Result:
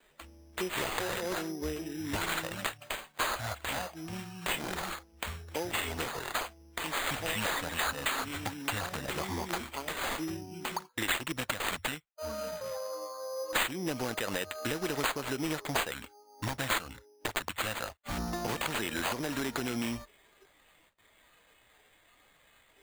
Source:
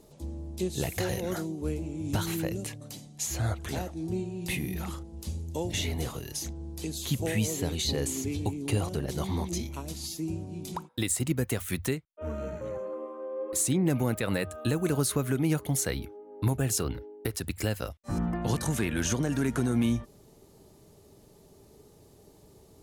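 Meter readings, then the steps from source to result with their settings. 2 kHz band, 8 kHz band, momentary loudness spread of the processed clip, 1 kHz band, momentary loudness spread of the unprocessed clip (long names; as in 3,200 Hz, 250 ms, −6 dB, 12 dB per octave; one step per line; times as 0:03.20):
+5.5 dB, −6.0 dB, 8 LU, +5.0 dB, 10 LU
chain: noise gate with hold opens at −47 dBFS
noise reduction from a noise print of the clip's start 14 dB
auto-filter notch square 0.22 Hz 390–4,900 Hz
high-shelf EQ 5,200 Hz +11.5 dB
bad sample-rate conversion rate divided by 8×, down none, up hold
floating-point word with a short mantissa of 6 bits
parametric band 130 Hz −13 dB 2.1 octaves
downward compressor 3 to 1, threshold −35 dBFS, peak gain reduction 14.5 dB
level +4 dB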